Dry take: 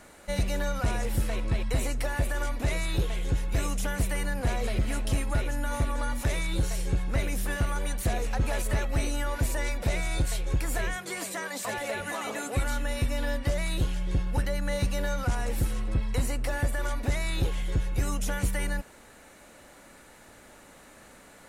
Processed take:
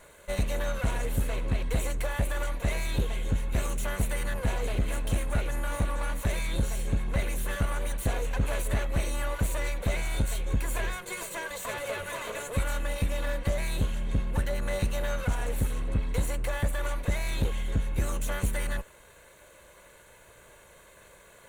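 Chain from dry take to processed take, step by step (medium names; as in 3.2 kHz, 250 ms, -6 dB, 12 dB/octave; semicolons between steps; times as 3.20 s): comb filter that takes the minimum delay 1.9 ms; peaking EQ 5.1 kHz -15 dB 0.23 oct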